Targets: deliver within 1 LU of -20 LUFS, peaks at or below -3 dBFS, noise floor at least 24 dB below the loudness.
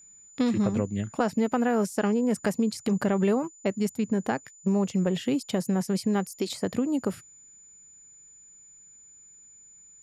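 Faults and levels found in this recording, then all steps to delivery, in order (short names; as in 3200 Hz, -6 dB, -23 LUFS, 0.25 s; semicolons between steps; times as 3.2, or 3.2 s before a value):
steady tone 7000 Hz; tone level -50 dBFS; loudness -27.0 LUFS; peak -11.5 dBFS; loudness target -20.0 LUFS
-> notch 7000 Hz, Q 30; gain +7 dB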